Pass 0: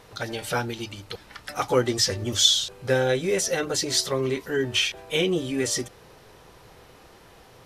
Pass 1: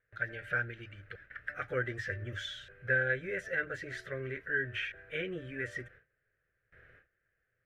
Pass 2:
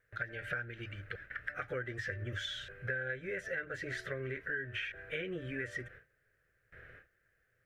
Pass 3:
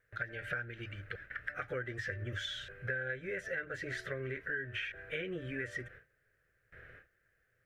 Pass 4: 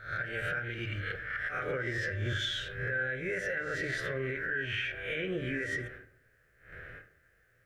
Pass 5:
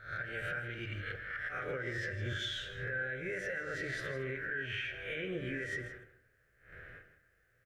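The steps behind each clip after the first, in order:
gate with hold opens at -39 dBFS; EQ curve 120 Hz 0 dB, 230 Hz -11 dB, 600 Hz -3 dB, 930 Hz -25 dB, 1600 Hz +13 dB, 4600 Hz -25 dB; gain -8.5 dB
compressor 5:1, threshold -41 dBFS, peak gain reduction 14.5 dB; gain +5 dB
nothing audible
spectral swells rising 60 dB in 0.47 s; limiter -31 dBFS, peak gain reduction 9 dB; reverb RT60 0.65 s, pre-delay 18 ms, DRR 9.5 dB; gain +5.5 dB
echo 0.16 s -12.5 dB; gain -4.5 dB

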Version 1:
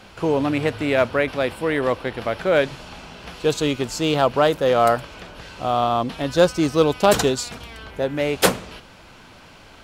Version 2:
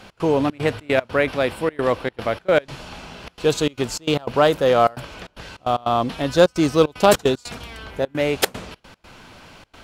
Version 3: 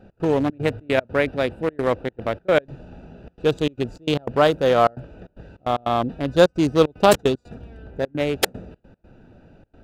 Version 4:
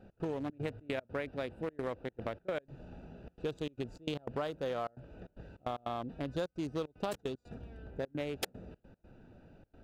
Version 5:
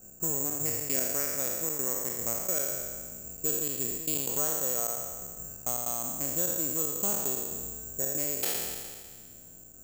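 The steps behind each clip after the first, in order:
step gate "x.xxx.xx.x.xxxxx" 151 bpm -24 dB; gain +1.5 dB
Wiener smoothing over 41 samples
compressor 6:1, threshold -26 dBFS, peak gain reduction 16 dB; gain -8 dB
spectral trails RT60 1.78 s; careless resampling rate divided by 6×, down filtered, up zero stuff; gain -4 dB

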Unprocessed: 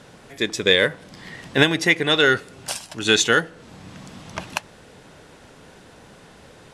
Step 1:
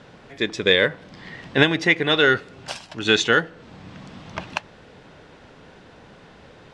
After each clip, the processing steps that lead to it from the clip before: LPF 4300 Hz 12 dB/oct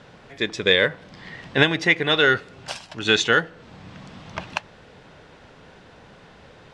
bell 290 Hz -3 dB 1.1 oct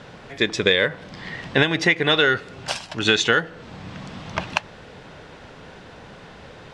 compressor 4:1, threshold -20 dBFS, peak gain reduction 8.5 dB; gain +5.5 dB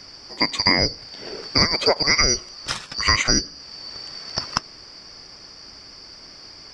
four-band scrambler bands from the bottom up 2341

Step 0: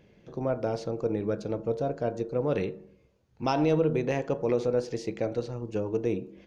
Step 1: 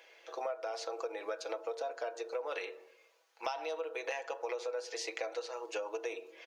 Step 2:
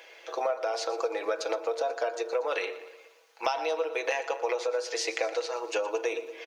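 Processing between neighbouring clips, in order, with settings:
Bessel high-pass 870 Hz, order 6; comb 6.1 ms, depth 53%; compressor 10:1, threshold -43 dBFS, peak gain reduction 19 dB; gain +8.5 dB
feedback echo 0.118 s, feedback 52%, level -15.5 dB; gain +8.5 dB

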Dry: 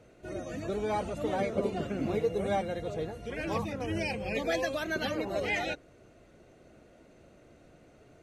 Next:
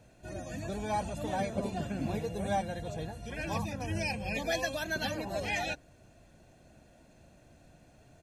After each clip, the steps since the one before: tone controls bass +2 dB, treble +7 dB; comb 1.2 ms, depth 53%; gain -3 dB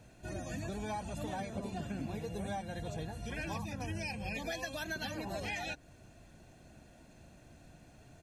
bell 560 Hz -4 dB 0.6 oct; compressor, threshold -38 dBFS, peak gain reduction 10 dB; gain +2 dB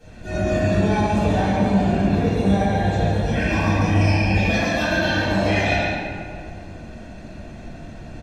echo 0.141 s -6 dB; reverb RT60 2.2 s, pre-delay 4 ms, DRR -17.5 dB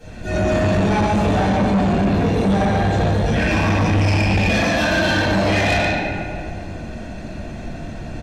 soft clip -19.5 dBFS, distortion -10 dB; gain +6.5 dB

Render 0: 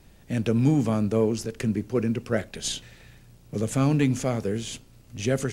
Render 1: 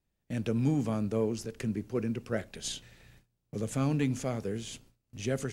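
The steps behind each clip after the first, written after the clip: gate with hold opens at -40 dBFS; gain -7 dB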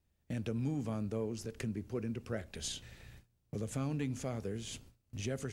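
bell 76 Hz +11.5 dB 0.5 oct; compressor 2:1, threshold -41 dBFS, peak gain reduction 10.5 dB; gain +1 dB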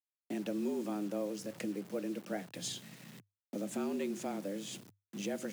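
bit-crush 9-bit; frequency shift +99 Hz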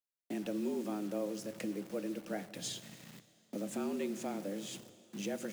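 in parallel at -7 dB: bit-crush 8-bit; on the sum: reverb RT60 2.6 s, pre-delay 7 ms, DRR 13.5 dB; gain -4 dB

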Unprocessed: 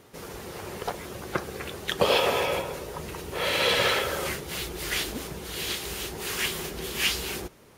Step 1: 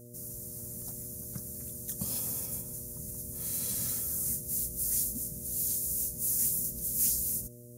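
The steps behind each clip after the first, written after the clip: EQ curve 250 Hz 0 dB, 360 Hz -24 dB, 2000 Hz -24 dB, 3100 Hz -27 dB, 6400 Hz +6 dB, 11000 Hz +15 dB; buzz 120 Hz, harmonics 5, -45 dBFS -4 dB/oct; gain -5.5 dB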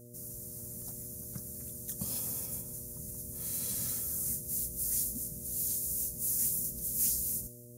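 thin delay 0.131 s, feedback 48%, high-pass 4000 Hz, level -19.5 dB; gain -2 dB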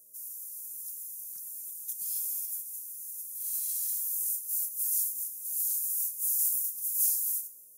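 differentiator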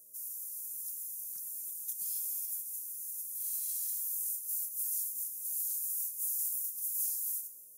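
compressor 2.5:1, threshold -34 dBFS, peak gain reduction 8 dB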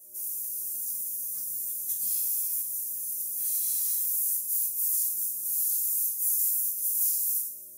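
notch 1400 Hz, Q 9.6; shoebox room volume 430 m³, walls furnished, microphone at 6.8 m

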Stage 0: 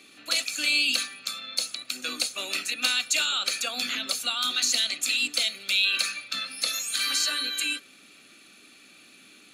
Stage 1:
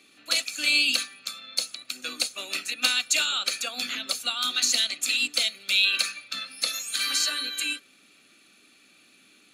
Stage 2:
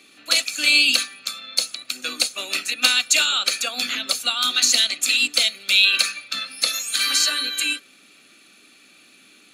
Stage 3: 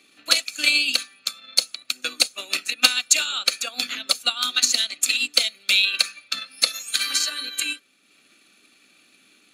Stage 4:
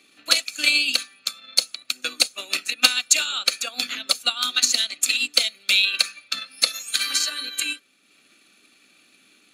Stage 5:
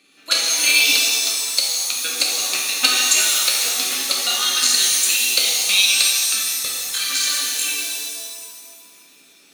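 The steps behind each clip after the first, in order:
upward expander 1.5:1, over -36 dBFS; gain +2.5 dB
low shelf 140 Hz -4 dB; gain +6 dB
transient shaper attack +8 dB, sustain -5 dB; gain -5.5 dB
nothing audible
crackling interface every 0.33 s, samples 1024, repeat, from 0.33; shimmer reverb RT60 1.8 s, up +7 st, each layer -2 dB, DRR -2.5 dB; gain -2 dB

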